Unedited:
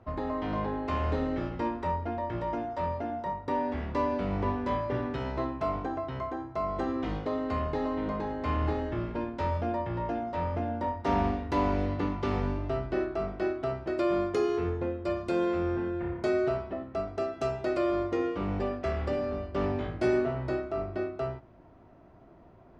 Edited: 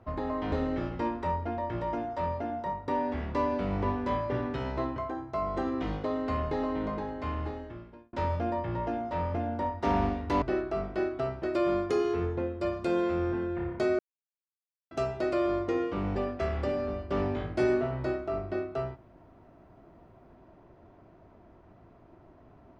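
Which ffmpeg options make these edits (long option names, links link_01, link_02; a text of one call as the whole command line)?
ffmpeg -i in.wav -filter_complex "[0:a]asplit=7[link_01][link_02][link_03][link_04][link_05][link_06][link_07];[link_01]atrim=end=0.522[link_08];[link_02]atrim=start=1.118:end=5.562[link_09];[link_03]atrim=start=6.178:end=9.35,asetpts=PTS-STARTPTS,afade=type=out:start_time=1.822:duration=1.35[link_10];[link_04]atrim=start=9.35:end=11.642,asetpts=PTS-STARTPTS,afade=type=in:duration=0.004:curve=hsin[link_11];[link_05]atrim=start=12.858:end=16.43,asetpts=PTS-STARTPTS,afade=type=out:start_time=3.568:duration=0.004:curve=hsin[link_12];[link_06]atrim=start=16.43:end=17.35,asetpts=PTS-STARTPTS,volume=0[link_13];[link_07]atrim=start=17.35,asetpts=PTS-STARTPTS,afade=type=in:duration=0.004:curve=hsin[link_14];[link_08][link_09]acrossfade=duration=0.004:curve1=hsin:curve2=hsin[link_15];[link_10][link_11]concat=n=2:v=0:a=1[link_16];[link_15][link_16]acrossfade=duration=0.004:curve1=hsin:curve2=hsin[link_17];[link_12][link_13][link_14]concat=n=3:v=0:a=1[link_18];[link_17][link_18]acrossfade=duration=0.004:curve1=hsin:curve2=hsin" out.wav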